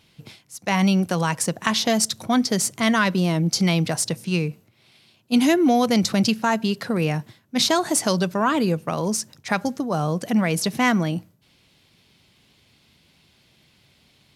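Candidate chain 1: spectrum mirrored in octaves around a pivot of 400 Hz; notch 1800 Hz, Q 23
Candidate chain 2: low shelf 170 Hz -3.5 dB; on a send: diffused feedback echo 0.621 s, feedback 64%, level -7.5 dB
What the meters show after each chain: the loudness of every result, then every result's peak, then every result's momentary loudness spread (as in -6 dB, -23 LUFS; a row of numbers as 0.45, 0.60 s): -24.5, -22.0 LUFS; -7.5, -3.0 dBFS; 9, 15 LU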